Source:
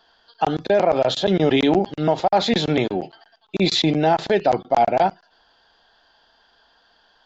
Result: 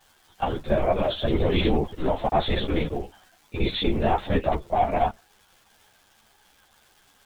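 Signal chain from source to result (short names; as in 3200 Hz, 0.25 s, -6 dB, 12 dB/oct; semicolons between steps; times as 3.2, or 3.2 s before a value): LPC vocoder at 8 kHz whisper; crackle 560/s -41 dBFS; ensemble effect; gain -1.5 dB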